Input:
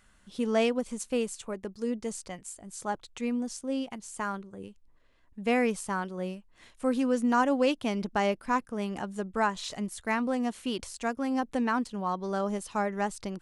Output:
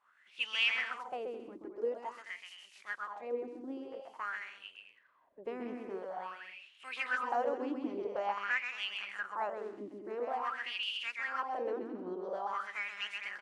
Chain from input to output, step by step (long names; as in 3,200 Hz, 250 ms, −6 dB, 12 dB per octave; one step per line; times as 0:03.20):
ceiling on every frequency bin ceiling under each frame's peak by 21 dB
bouncing-ball delay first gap 130 ms, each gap 0.65×, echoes 5
LFO wah 0.48 Hz 310–2,900 Hz, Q 7.2
level +3 dB